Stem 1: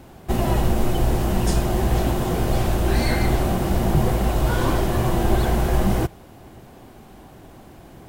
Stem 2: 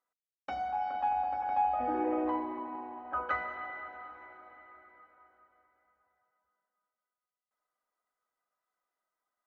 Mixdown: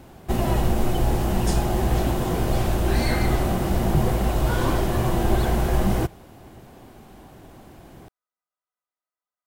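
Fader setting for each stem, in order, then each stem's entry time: -1.5, -8.5 dB; 0.00, 0.00 s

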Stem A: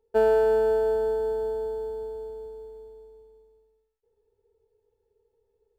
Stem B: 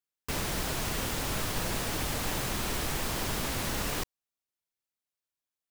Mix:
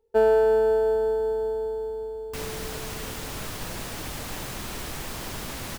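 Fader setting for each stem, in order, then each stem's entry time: +1.5, -2.5 dB; 0.00, 2.05 s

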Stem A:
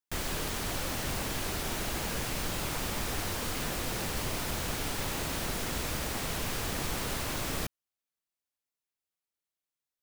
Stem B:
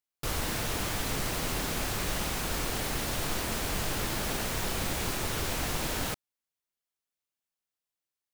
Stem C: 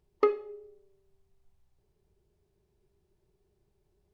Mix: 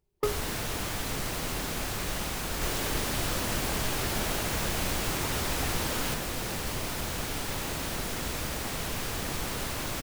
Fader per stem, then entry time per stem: +0.5, -1.0, -5.5 dB; 2.50, 0.00, 0.00 s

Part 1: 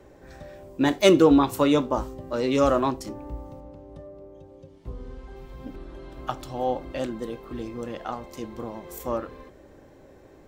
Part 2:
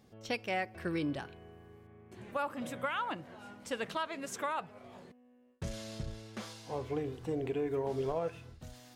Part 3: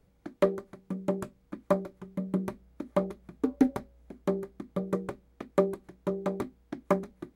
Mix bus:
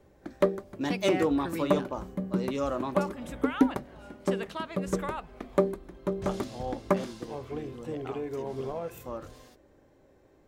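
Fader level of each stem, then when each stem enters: -10.0, -1.0, +0.5 dB; 0.00, 0.60, 0.00 s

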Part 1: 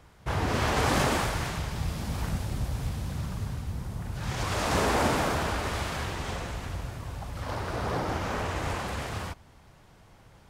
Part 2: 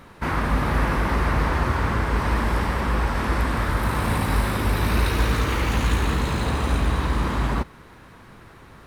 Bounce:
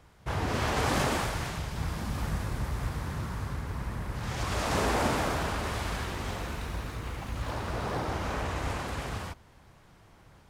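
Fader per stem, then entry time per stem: -2.5, -17.5 dB; 0.00, 1.55 s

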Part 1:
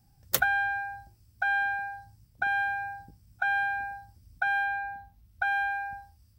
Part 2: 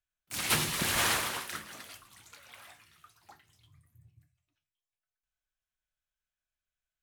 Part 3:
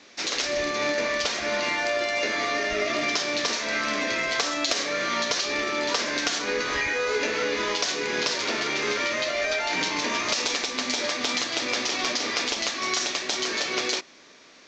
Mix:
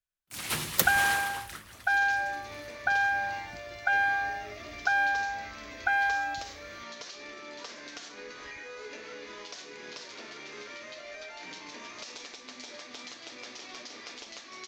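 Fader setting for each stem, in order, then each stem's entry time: +1.5, -4.0, -17.5 dB; 0.45, 0.00, 1.70 s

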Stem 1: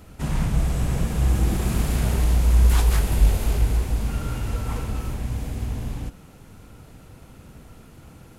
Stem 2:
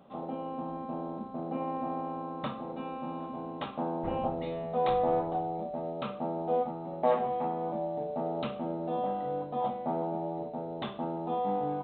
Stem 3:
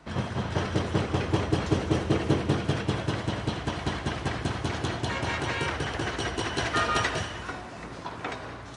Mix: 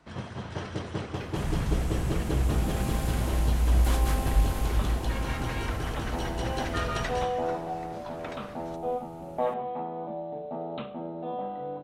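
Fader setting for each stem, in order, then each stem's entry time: -6.5, -2.0, -7.0 dB; 1.15, 2.35, 0.00 s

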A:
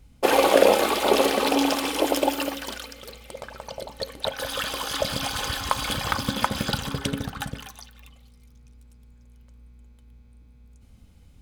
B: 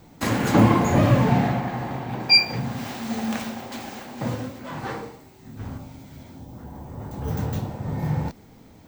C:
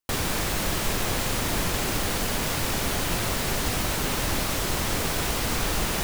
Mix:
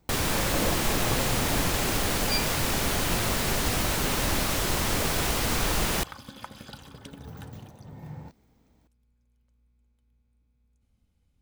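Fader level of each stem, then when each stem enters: -17.5, -16.0, 0.0 dB; 0.00, 0.00, 0.00 s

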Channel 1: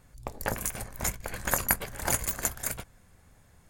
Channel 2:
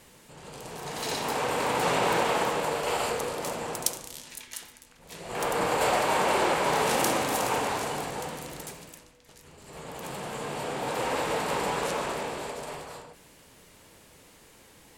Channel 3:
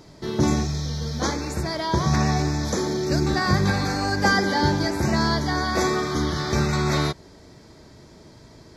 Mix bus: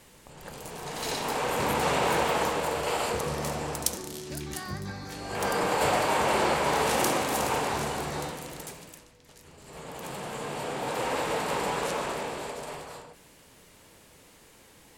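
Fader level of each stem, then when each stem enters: -16.0, -0.5, -16.0 dB; 0.00, 0.00, 1.20 s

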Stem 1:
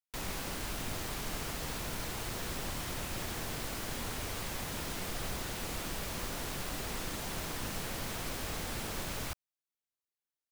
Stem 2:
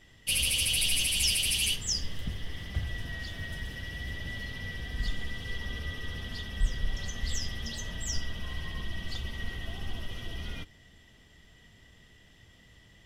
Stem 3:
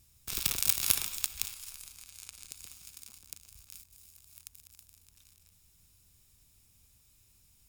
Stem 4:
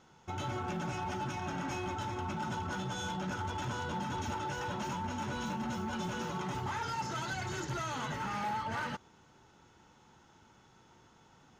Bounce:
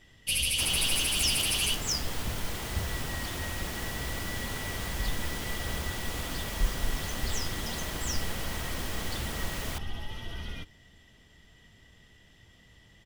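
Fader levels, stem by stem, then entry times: +1.5, -0.5, -13.5, -17.5 dB; 0.45, 0.00, 0.50, 1.55 s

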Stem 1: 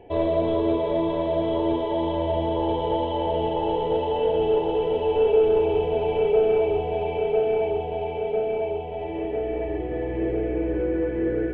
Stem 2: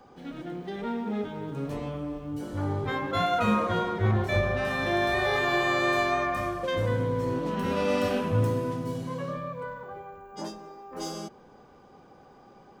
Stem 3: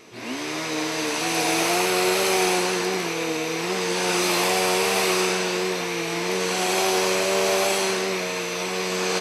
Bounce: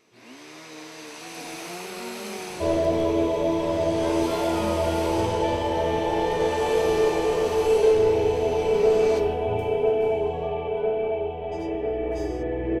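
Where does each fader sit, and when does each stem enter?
0.0, -9.5, -14.5 dB; 2.50, 1.15, 0.00 s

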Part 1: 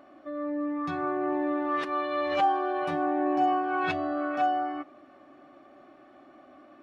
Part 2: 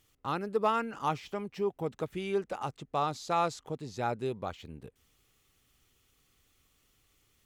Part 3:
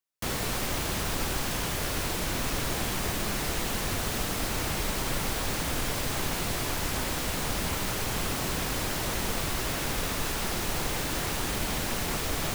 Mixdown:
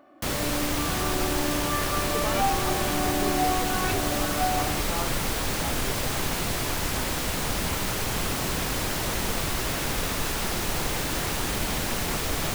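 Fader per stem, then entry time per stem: -1.5, -6.0, +2.5 dB; 0.00, 1.60, 0.00 s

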